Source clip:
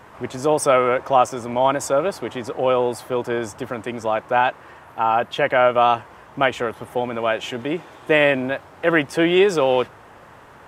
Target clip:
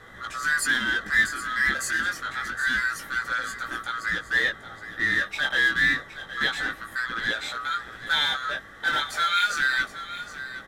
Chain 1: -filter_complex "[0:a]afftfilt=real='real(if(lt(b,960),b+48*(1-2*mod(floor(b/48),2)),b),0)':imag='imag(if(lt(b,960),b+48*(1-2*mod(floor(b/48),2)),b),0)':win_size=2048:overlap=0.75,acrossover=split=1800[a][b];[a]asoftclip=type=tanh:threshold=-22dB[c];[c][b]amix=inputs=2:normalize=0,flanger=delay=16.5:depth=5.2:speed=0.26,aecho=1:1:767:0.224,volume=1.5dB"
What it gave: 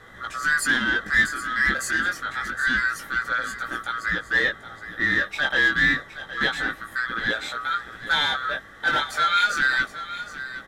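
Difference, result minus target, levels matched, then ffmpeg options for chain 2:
soft clip: distortion -4 dB
-filter_complex "[0:a]afftfilt=real='real(if(lt(b,960),b+48*(1-2*mod(floor(b/48),2)),b),0)':imag='imag(if(lt(b,960),b+48*(1-2*mod(floor(b/48),2)),b),0)':win_size=2048:overlap=0.75,acrossover=split=1800[a][b];[a]asoftclip=type=tanh:threshold=-29.5dB[c];[c][b]amix=inputs=2:normalize=0,flanger=delay=16.5:depth=5.2:speed=0.26,aecho=1:1:767:0.224,volume=1.5dB"

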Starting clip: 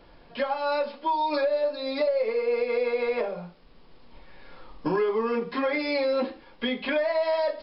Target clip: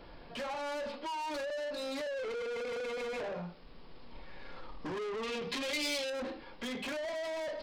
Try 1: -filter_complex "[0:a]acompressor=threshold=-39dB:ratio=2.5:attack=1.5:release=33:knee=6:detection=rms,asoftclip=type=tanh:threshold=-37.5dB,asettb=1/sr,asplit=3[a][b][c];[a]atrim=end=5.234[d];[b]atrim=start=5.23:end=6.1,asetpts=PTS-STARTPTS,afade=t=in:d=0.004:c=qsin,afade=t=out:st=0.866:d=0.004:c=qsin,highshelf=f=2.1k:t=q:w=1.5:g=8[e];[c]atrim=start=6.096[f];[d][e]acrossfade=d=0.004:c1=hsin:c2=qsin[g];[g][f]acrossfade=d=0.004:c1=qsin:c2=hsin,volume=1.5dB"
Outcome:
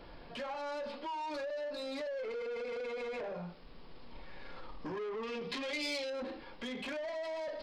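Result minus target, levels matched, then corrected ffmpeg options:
compressor: peak gain reduction +7 dB
-filter_complex "[0:a]acompressor=threshold=-27dB:ratio=2.5:attack=1.5:release=33:knee=6:detection=rms,asoftclip=type=tanh:threshold=-37.5dB,asettb=1/sr,asplit=3[a][b][c];[a]atrim=end=5.234[d];[b]atrim=start=5.23:end=6.1,asetpts=PTS-STARTPTS,afade=t=in:d=0.004:c=qsin,afade=t=out:st=0.866:d=0.004:c=qsin,highshelf=f=2.1k:t=q:w=1.5:g=8[e];[c]atrim=start=6.096[f];[d][e]acrossfade=d=0.004:c1=hsin:c2=qsin[g];[g][f]acrossfade=d=0.004:c1=qsin:c2=hsin,volume=1.5dB"

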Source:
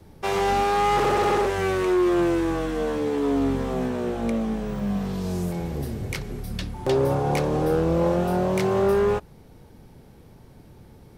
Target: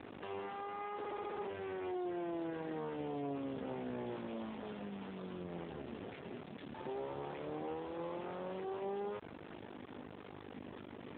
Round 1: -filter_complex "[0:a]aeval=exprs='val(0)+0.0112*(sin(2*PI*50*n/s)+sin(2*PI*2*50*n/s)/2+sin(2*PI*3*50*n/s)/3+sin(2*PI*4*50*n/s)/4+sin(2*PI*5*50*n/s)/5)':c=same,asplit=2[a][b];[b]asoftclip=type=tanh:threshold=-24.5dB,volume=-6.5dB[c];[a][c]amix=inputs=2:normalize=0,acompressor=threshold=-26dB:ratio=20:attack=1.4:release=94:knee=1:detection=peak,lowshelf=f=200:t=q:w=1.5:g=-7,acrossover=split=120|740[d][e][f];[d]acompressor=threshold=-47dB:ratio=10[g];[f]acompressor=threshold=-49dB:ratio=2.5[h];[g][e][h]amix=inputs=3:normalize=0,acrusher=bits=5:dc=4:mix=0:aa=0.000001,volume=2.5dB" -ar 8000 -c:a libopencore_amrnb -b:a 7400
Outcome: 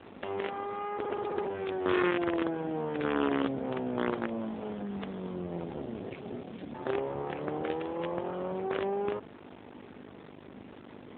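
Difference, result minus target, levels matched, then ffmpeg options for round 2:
compressor: peak gain reduction -8.5 dB
-filter_complex "[0:a]aeval=exprs='val(0)+0.0112*(sin(2*PI*50*n/s)+sin(2*PI*2*50*n/s)/2+sin(2*PI*3*50*n/s)/3+sin(2*PI*4*50*n/s)/4+sin(2*PI*5*50*n/s)/5)':c=same,asplit=2[a][b];[b]asoftclip=type=tanh:threshold=-24.5dB,volume=-6.5dB[c];[a][c]amix=inputs=2:normalize=0,acompressor=threshold=-35dB:ratio=20:attack=1.4:release=94:knee=1:detection=peak,lowshelf=f=200:t=q:w=1.5:g=-7,acrossover=split=120|740[d][e][f];[d]acompressor=threshold=-47dB:ratio=10[g];[f]acompressor=threshold=-49dB:ratio=2.5[h];[g][e][h]amix=inputs=3:normalize=0,acrusher=bits=5:dc=4:mix=0:aa=0.000001,volume=2.5dB" -ar 8000 -c:a libopencore_amrnb -b:a 7400

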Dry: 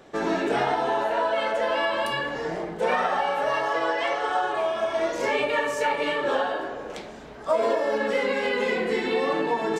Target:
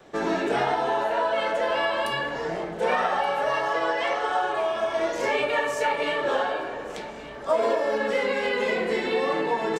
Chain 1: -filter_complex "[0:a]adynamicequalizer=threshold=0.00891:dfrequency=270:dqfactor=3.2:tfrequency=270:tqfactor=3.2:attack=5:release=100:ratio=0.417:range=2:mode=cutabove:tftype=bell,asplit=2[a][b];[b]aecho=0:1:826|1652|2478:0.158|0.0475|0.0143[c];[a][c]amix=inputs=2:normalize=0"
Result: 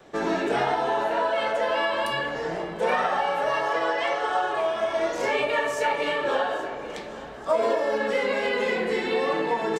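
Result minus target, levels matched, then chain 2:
echo 0.349 s early
-filter_complex "[0:a]adynamicequalizer=threshold=0.00891:dfrequency=270:dqfactor=3.2:tfrequency=270:tqfactor=3.2:attack=5:release=100:ratio=0.417:range=2:mode=cutabove:tftype=bell,asplit=2[a][b];[b]aecho=0:1:1175|2350|3525:0.158|0.0475|0.0143[c];[a][c]amix=inputs=2:normalize=0"

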